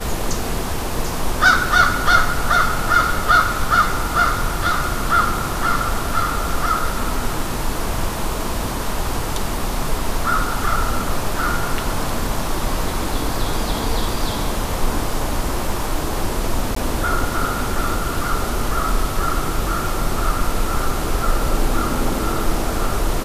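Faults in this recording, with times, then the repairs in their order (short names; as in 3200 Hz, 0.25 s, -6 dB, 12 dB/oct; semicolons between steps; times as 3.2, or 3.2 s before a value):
16.75–16.76 gap 14 ms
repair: interpolate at 16.75, 14 ms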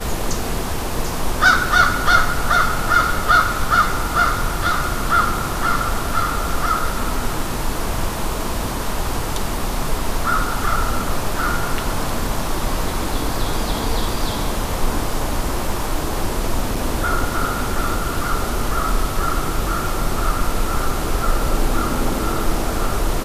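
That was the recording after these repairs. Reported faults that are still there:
none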